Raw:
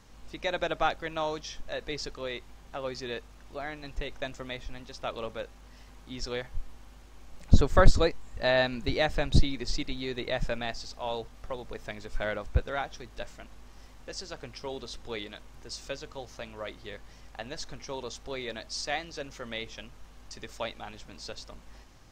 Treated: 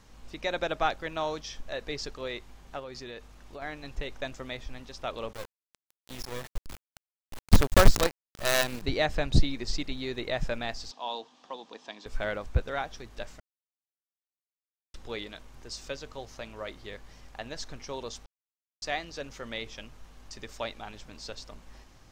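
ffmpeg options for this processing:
ffmpeg -i in.wav -filter_complex "[0:a]asettb=1/sr,asplit=3[link_01][link_02][link_03];[link_01]atrim=end=2.794[link_04];[link_02]atrim=start=2.79:end=3.62,asetpts=PTS-STARTPTS,afade=type=in:duration=0.004:curve=qsin,afade=type=out:start_time=0.826:duration=0.004:curve=qsin,acompressor=threshold=-38dB:ratio=5:attack=3.2:release=140:knee=1:detection=peak[link_05];[link_03]atrim=start=3.616[link_06];[link_04][link_05]acrossfade=duration=0.004:curve1=hsin:curve2=qsin[link_07];[link_07][link_06]acrossfade=duration=0.004:curve1=qsin:curve2=hsin,asettb=1/sr,asplit=3[link_08][link_09][link_10];[link_08]atrim=end=5.334[link_11];[link_09]atrim=start=5.33:end=8.82,asetpts=PTS-STARTPTS,afade=type=in:duration=0.004:curve=qsin,afade=type=out:start_time=3.486:duration=0.004:curve=qsin,acrusher=bits=4:dc=4:mix=0:aa=0.000001[link_12];[link_10]atrim=start=8.816[link_13];[link_11][link_12]acrossfade=duration=0.004:curve1=hsin:curve2=qsin[link_14];[link_14][link_13]acrossfade=duration=0.004:curve1=qsin:curve2=hsin,asettb=1/sr,asplit=3[link_15][link_16][link_17];[link_15]atrim=end=10.914[link_18];[link_16]atrim=start=10.91:end=12.06,asetpts=PTS-STARTPTS,afade=type=in:duration=0.004:curve=qsin,afade=type=out:start_time=1.146:duration=0.004:curve=qsin,highpass=frequency=250:width=0.5412,highpass=frequency=250:width=1.3066,equalizer=frequency=400:width_type=q:width=4:gain=-8,equalizer=frequency=580:width_type=q:width=4:gain=-7,equalizer=frequency=960:width_type=q:width=4:gain=4,equalizer=frequency=1400:width_type=q:width=4:gain=-8,equalizer=frequency=2100:width_type=q:width=4:gain=-9,equalizer=frequency=3400:width_type=q:width=4:gain=5,lowpass=frequency=6600:width=0.5412,lowpass=frequency=6600:width=1.3066[link_19];[link_17]atrim=start=12.056[link_20];[link_18][link_19]acrossfade=duration=0.004:curve1=hsin:curve2=qsin[link_21];[link_21][link_20]acrossfade=duration=0.004:curve1=qsin:curve2=hsin,asplit=5[link_22][link_23][link_24][link_25][link_26];[link_22]atrim=end=13.4,asetpts=PTS-STARTPTS,afade=type=out:start_time=13.396:duration=0.004:curve=hsin[link_27];[link_23]atrim=start=13.4:end=14.94,asetpts=PTS-STARTPTS,volume=0[link_28];[link_24]atrim=start=14.94:end=18.26,asetpts=PTS-STARTPTS,afade=type=in:duration=0.004:curve=hsin,afade=type=out:start_time=3.316:duration=0.004:curve=hsin[link_29];[link_25]atrim=start=18.26:end=18.82,asetpts=PTS-STARTPTS,volume=0[link_30];[link_26]atrim=start=18.82,asetpts=PTS-STARTPTS,afade=type=in:duration=0.004:curve=hsin[link_31];[link_27][link_28][link_29][link_30][link_31]concat=n=5:v=0:a=1" out.wav

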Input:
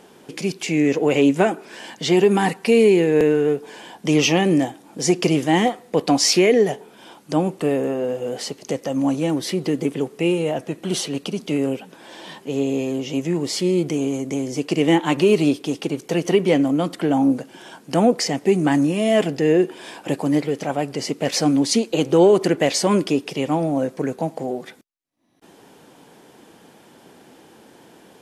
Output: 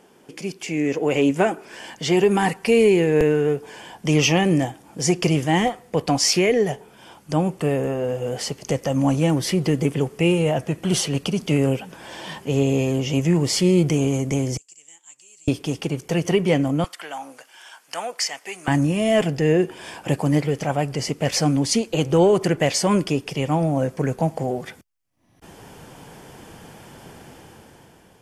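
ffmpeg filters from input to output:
ffmpeg -i in.wav -filter_complex "[0:a]asettb=1/sr,asplit=3[link_01][link_02][link_03];[link_01]atrim=end=14.574[link_04];[link_02]atrim=start=14.57:end=15.48,asetpts=PTS-STARTPTS,afade=type=in:duration=0.004:curve=qsin,afade=type=out:start_time=0.906:duration=0.004:curve=qsin,bandpass=frequency=7400:width_type=q:width=12[link_05];[link_03]atrim=start=15.476[link_06];[link_04][link_05]acrossfade=duration=0.004:curve1=hsin:curve2=qsin[link_07];[link_07][link_06]acrossfade=duration=0.004:curve1=qsin:curve2=hsin,asettb=1/sr,asplit=3[link_08][link_09][link_10];[link_08]atrim=end=16.844[link_11];[link_09]atrim=start=16.84:end=18.68,asetpts=PTS-STARTPTS,afade=type=in:duration=0.004:curve=qsin,afade=type=out:start_time=1.836:duration=0.004:curve=qsin,highpass=1100[link_12];[link_10]atrim=start=18.676[link_13];[link_11][link_12]acrossfade=duration=0.004:curve1=hsin:curve2=qsin[link_14];[link_14][link_13]acrossfade=duration=0.004:curve1=qsin:curve2=hsin,asubboost=boost=7.5:cutoff=96,dynaudnorm=framelen=220:gausssize=9:maxgain=11.5dB,equalizer=frequency=3900:width=6.6:gain=-8,volume=-5dB" out.wav

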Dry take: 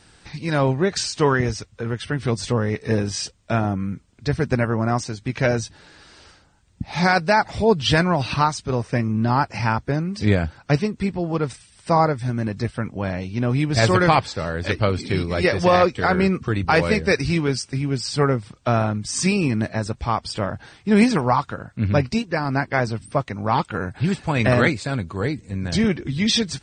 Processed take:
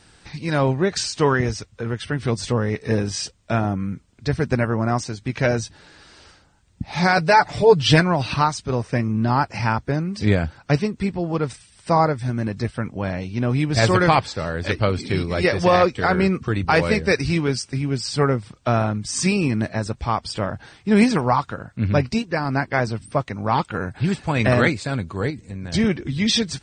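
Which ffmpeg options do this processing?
ffmpeg -i in.wav -filter_complex "[0:a]asettb=1/sr,asplit=3[link_01][link_02][link_03];[link_01]atrim=end=7.174[link_04];[link_02]atrim=start=7.17:end=8,asetpts=PTS-STARTPTS,afade=type=in:duration=0.004:curve=qsin,afade=type=out:start_time=0.826:duration=0.004:curve=qsin,aecho=1:1:6.8:0.89,atrim=end_sample=36603[link_05];[link_03]atrim=start=7.996[link_06];[link_04][link_05]acrossfade=duration=0.004:curve1=hsin:curve2=qsin[link_07];[link_07][link_06]acrossfade=duration=0.004:curve1=qsin:curve2=hsin,asettb=1/sr,asplit=3[link_08][link_09][link_10];[link_08]atrim=end=25.304[link_11];[link_09]atrim=start=25.3:end=25.74,asetpts=PTS-STARTPTS,afade=type=in:duration=0.004:curve=qsin,afade=type=out:start_time=0.436:duration=0.004:curve=qsin,acompressor=threshold=-29dB:ratio=2.5:attack=3.2:release=140:knee=1:detection=peak[link_12];[link_10]atrim=start=25.736[link_13];[link_11][link_12]acrossfade=duration=0.004:curve1=hsin:curve2=qsin[link_14];[link_14][link_13]acrossfade=duration=0.004:curve1=qsin:curve2=hsin" out.wav

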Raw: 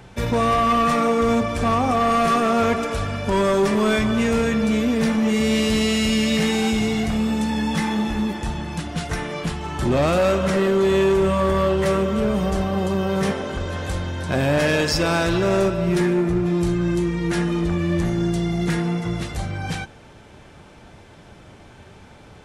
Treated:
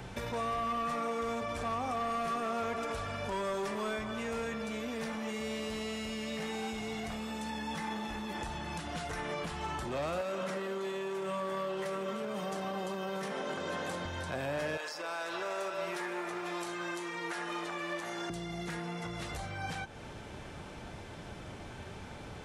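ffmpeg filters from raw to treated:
ffmpeg -i in.wav -filter_complex "[0:a]asettb=1/sr,asplit=3[link_01][link_02][link_03];[link_01]atrim=end=10.214[link_04];[link_02]atrim=start=10.21:end=14.05,asetpts=PTS-STARTPTS,afade=type=in:duration=0.004:curve=qsin,afade=type=out:start_time=3.836:duration=0.004:curve=qsin,highpass=frequency=150:width=0.5412,highpass=frequency=150:width=1.3066[link_05];[link_03]atrim=start=14.046[link_06];[link_04][link_05]acrossfade=duration=0.004:curve1=hsin:curve2=qsin[link_07];[link_07][link_06]acrossfade=duration=0.004:curve1=qsin:curve2=hsin,asettb=1/sr,asplit=3[link_08][link_09][link_10];[link_08]atrim=end=14.774[link_11];[link_09]atrim=start=14.77:end=18.3,asetpts=PTS-STARTPTS,afade=type=in:duration=0.004:curve=qsin,afade=type=out:start_time=3.526:duration=0.004:curve=qsin,highpass=790[link_12];[link_10]atrim=start=18.296[link_13];[link_11][link_12]acrossfade=duration=0.004:curve1=hsin:curve2=qsin[link_14];[link_14][link_13]acrossfade=duration=0.004:curve1=qsin:curve2=hsin,alimiter=level_in=0.5dB:limit=-24dB:level=0:latency=1:release=219,volume=-0.5dB,acrossover=split=500|1500[link_15][link_16][link_17];[link_15]acompressor=threshold=-42dB:ratio=4[link_18];[link_16]acompressor=threshold=-34dB:ratio=4[link_19];[link_17]acompressor=threshold=-44dB:ratio=4[link_20];[link_18][link_19][link_20]amix=inputs=3:normalize=0" out.wav

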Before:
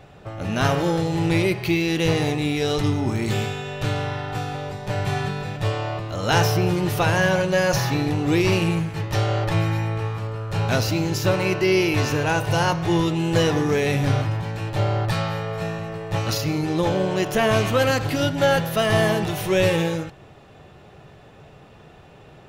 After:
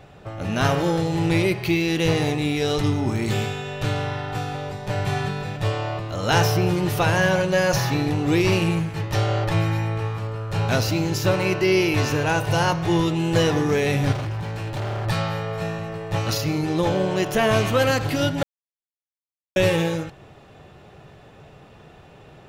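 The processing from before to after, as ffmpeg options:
ffmpeg -i in.wav -filter_complex "[0:a]asettb=1/sr,asplit=3[link_01][link_02][link_03];[link_01]atrim=end=14.124[link_04];[link_02]atrim=start=14.12:end=15.06,asetpts=PTS-STARTPTS,afade=type=in:duration=0.004:curve=qsin,afade=type=out:start_time=0.936:duration=0.004:curve=qsin,asoftclip=type=hard:threshold=-25dB[link_05];[link_03]atrim=start=15.056[link_06];[link_04][link_05]acrossfade=duration=0.004:curve1=hsin:curve2=qsin[link_07];[link_07][link_06]acrossfade=duration=0.004:curve1=qsin:curve2=hsin,asplit=3[link_08][link_09][link_10];[link_08]atrim=end=18.43,asetpts=PTS-STARTPTS,afade=type=out:start_time=18.426:duration=0.004:curve=hsin[link_11];[link_09]atrim=start=18.43:end=19.56,asetpts=PTS-STARTPTS,volume=0[link_12];[link_10]atrim=start=19.56,asetpts=PTS-STARTPTS,afade=type=in:duration=0.004:curve=hsin[link_13];[link_11][link_12][link_13]concat=n=3:v=0:a=1" out.wav

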